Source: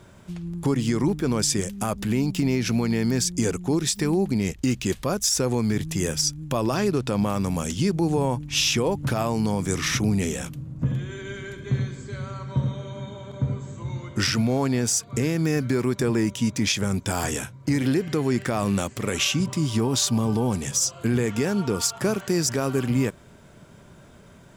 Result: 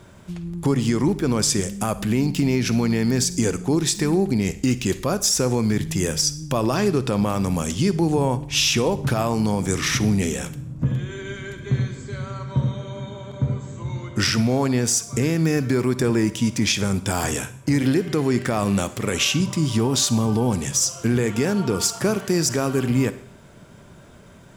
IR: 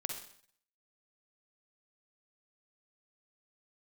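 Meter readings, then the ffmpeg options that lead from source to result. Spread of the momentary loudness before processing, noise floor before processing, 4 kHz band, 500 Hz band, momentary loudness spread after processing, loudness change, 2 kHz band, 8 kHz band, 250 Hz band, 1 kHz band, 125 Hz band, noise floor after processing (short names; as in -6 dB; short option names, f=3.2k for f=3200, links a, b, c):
8 LU, -49 dBFS, +2.5 dB, +2.5 dB, 8 LU, +2.5 dB, +2.5 dB, +2.5 dB, +2.5 dB, +2.5 dB, +2.5 dB, -46 dBFS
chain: -filter_complex "[0:a]asplit=2[a][b];[1:a]atrim=start_sample=2205[c];[b][c]afir=irnorm=-1:irlink=0,volume=-8dB[d];[a][d]amix=inputs=2:normalize=0"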